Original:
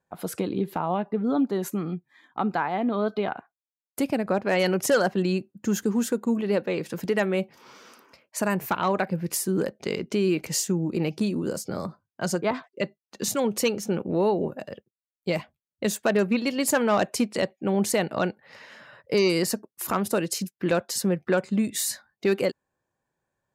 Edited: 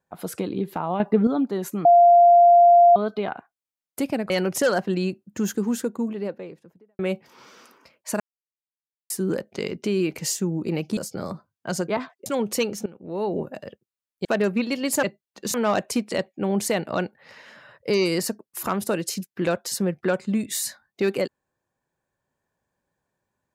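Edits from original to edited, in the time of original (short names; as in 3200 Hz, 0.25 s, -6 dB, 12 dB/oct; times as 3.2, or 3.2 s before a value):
1–1.27 gain +8 dB
1.85–2.96 bleep 695 Hz -9.5 dBFS
4.3–4.58 cut
5.89–7.27 studio fade out
8.48–9.38 mute
11.25–11.51 cut
12.8–13.31 move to 16.78
13.91–14.39 fade in quadratic, from -18 dB
15.3–16 cut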